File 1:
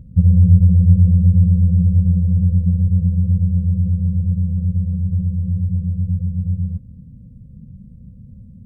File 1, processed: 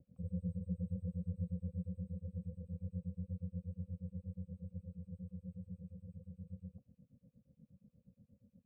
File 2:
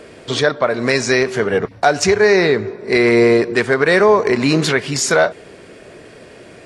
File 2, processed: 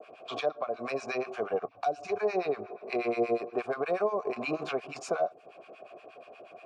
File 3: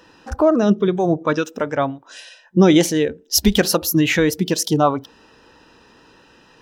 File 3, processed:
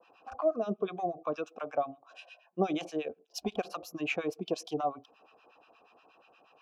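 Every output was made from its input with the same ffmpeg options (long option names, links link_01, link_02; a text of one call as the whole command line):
ffmpeg -i in.wav -filter_complex "[0:a]adynamicequalizer=threshold=0.0178:dfrequency=3200:dqfactor=1.1:tfrequency=3200:tqfactor=1.1:attack=5:release=100:ratio=0.375:range=3:mode=cutabove:tftype=bell,asplit=3[link_01][link_02][link_03];[link_01]bandpass=frequency=730:width_type=q:width=8,volume=0dB[link_04];[link_02]bandpass=frequency=1090:width_type=q:width=8,volume=-6dB[link_05];[link_03]bandpass=frequency=2440:width_type=q:width=8,volume=-9dB[link_06];[link_04][link_05][link_06]amix=inputs=3:normalize=0,acrossover=split=370|4600[link_07][link_08][link_09];[link_08]acompressor=threshold=-34dB:ratio=4[link_10];[link_07][link_10][link_09]amix=inputs=3:normalize=0,acrossover=split=1000[link_11][link_12];[link_11]aeval=exprs='val(0)*(1-1/2+1/2*cos(2*PI*8.4*n/s))':channel_layout=same[link_13];[link_12]aeval=exprs='val(0)*(1-1/2-1/2*cos(2*PI*8.4*n/s))':channel_layout=same[link_14];[link_13][link_14]amix=inputs=2:normalize=0,volume=7dB" out.wav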